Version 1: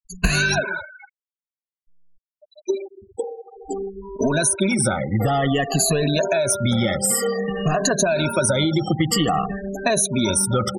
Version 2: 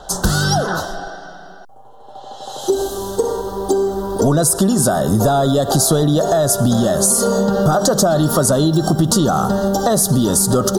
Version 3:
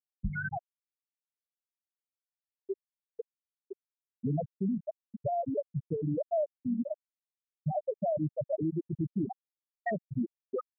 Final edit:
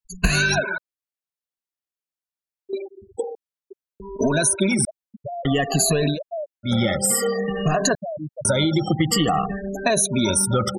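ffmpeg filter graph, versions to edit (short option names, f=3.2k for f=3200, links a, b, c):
-filter_complex "[2:a]asplit=5[a][b][c][d][e];[0:a]asplit=6[f][g][h][i][j][k];[f]atrim=end=0.782[l];[a]atrim=start=0.778:end=2.732[m];[g]atrim=start=2.728:end=3.352[n];[b]atrim=start=3.348:end=4.002[o];[h]atrim=start=3.998:end=4.852[p];[c]atrim=start=4.848:end=5.452[q];[i]atrim=start=5.448:end=6.19[r];[d]atrim=start=6.09:end=6.73[s];[j]atrim=start=6.63:end=7.952[t];[e]atrim=start=7.948:end=8.452[u];[k]atrim=start=8.448[v];[l][m]acrossfade=d=0.004:c1=hsin:c2=hsin[w];[w][n]acrossfade=d=0.004:c1=hsin:c2=hsin[x];[x][o]acrossfade=d=0.004:c1=hsin:c2=hsin[y];[y][p]acrossfade=d=0.004:c1=hsin:c2=hsin[z];[z][q]acrossfade=d=0.004:c1=hsin:c2=hsin[aa];[aa][r]acrossfade=d=0.004:c1=hsin:c2=hsin[ab];[ab][s]acrossfade=d=0.1:c1=tri:c2=tri[ac];[ac][t]acrossfade=d=0.1:c1=tri:c2=tri[ad];[ad][u]acrossfade=d=0.004:c1=hsin:c2=hsin[ae];[ae][v]acrossfade=d=0.004:c1=hsin:c2=hsin"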